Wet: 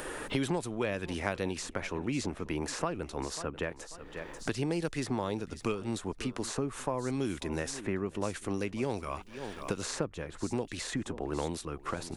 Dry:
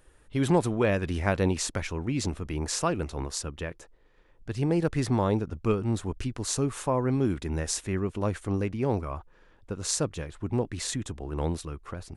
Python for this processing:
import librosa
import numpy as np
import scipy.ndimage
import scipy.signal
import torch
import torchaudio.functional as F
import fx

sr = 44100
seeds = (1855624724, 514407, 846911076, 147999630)

p1 = fx.peak_eq(x, sr, hz=96.0, db=-8.0, octaves=1.7)
p2 = p1 + fx.echo_feedback(p1, sr, ms=540, feedback_pct=23, wet_db=-21.5, dry=0)
p3 = fx.band_squash(p2, sr, depth_pct=100)
y = F.gain(torch.from_numpy(p3), -4.5).numpy()